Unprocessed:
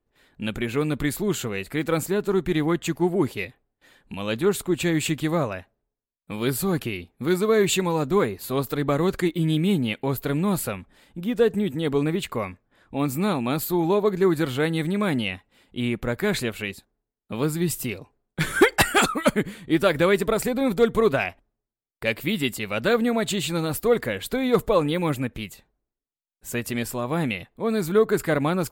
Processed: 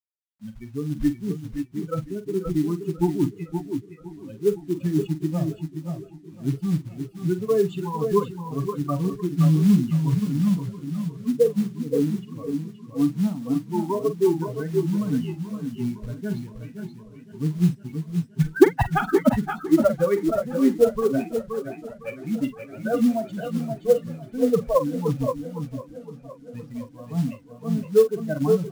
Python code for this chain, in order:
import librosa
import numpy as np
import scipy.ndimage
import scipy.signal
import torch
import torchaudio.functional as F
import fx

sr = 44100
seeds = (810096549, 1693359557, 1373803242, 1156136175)

p1 = fx.bin_expand(x, sr, power=3.0)
p2 = scipy.signal.sosfilt(scipy.signal.butter(2, 1100.0, 'lowpass', fs=sr, output='sos'), p1)
p3 = fx.peak_eq(p2, sr, hz=160.0, db=5.0, octaves=2.8)
p4 = fx.rider(p3, sr, range_db=4, speed_s=0.5)
p5 = p3 + (p4 * librosa.db_to_amplitude(-1.0))
p6 = fx.quant_companded(p5, sr, bits=6)
p7 = p6 + fx.echo_multitap(p6, sr, ms=(45, 524, 542), db=(-11.0, -7.5, -12.0), dry=0)
y = fx.echo_warbled(p7, sr, ms=514, feedback_pct=75, rate_hz=2.8, cents=112, wet_db=-18.5)